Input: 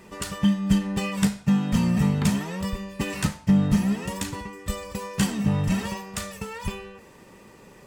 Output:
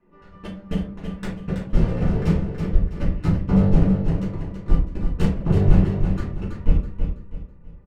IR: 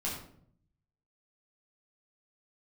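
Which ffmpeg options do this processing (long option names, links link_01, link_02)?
-filter_complex "[0:a]aemphasis=mode=reproduction:type=50kf,bandreject=frequency=50:width_type=h:width=6,bandreject=frequency=100:width_type=h:width=6,bandreject=frequency=150:width_type=h:width=6,bandreject=frequency=200:width_type=h:width=6,asubboost=boost=8:cutoff=110,acrossover=split=210[link_01][link_02];[link_01]dynaudnorm=framelen=750:gausssize=5:maxgain=11.5dB[link_03];[link_03][link_02]amix=inputs=2:normalize=0,asoftclip=type=tanh:threshold=-7.5dB,aeval=exprs='0.422*(cos(1*acos(clip(val(0)/0.422,-1,1)))-cos(1*PI/2))+0.0841*(cos(7*acos(clip(val(0)/0.422,-1,1)))-cos(7*PI/2))':channel_layout=same,adynamicsmooth=sensitivity=5.5:basefreq=1800,aecho=1:1:327|654|981|1308:0.473|0.161|0.0547|0.0186[link_04];[1:a]atrim=start_sample=2205,asetrate=83790,aresample=44100[link_05];[link_04][link_05]afir=irnorm=-1:irlink=0,volume=-2.5dB"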